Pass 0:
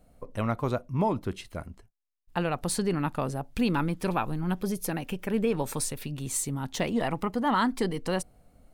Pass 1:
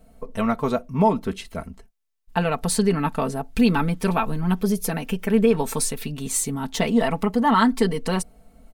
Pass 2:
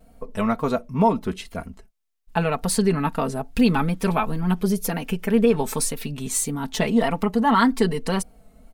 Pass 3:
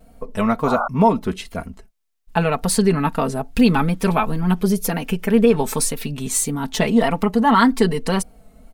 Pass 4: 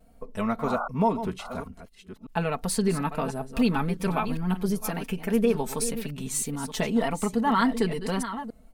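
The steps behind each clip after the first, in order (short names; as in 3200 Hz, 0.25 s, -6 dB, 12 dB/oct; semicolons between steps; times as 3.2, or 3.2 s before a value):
comb 4.5 ms, depth 71%; gain +4.5 dB
wow and flutter 64 cents
painted sound noise, 0.66–0.88, 560–1500 Hz -26 dBFS; gain +3.5 dB
reverse delay 0.567 s, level -11 dB; gain -8.5 dB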